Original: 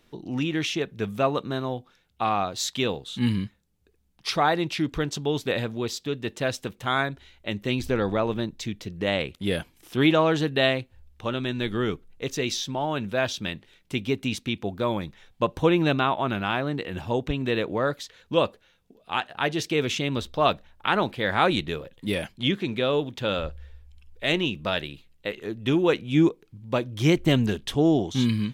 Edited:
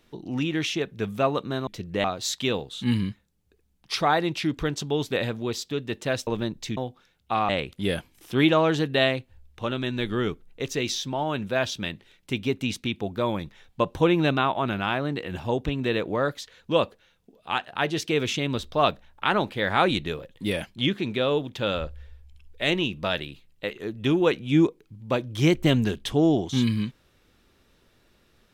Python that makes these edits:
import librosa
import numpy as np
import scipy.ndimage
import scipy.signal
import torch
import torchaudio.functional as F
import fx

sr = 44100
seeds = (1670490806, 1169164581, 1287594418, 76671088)

y = fx.edit(x, sr, fx.swap(start_s=1.67, length_s=0.72, other_s=8.74, other_length_s=0.37),
    fx.cut(start_s=6.62, length_s=1.62), tone=tone)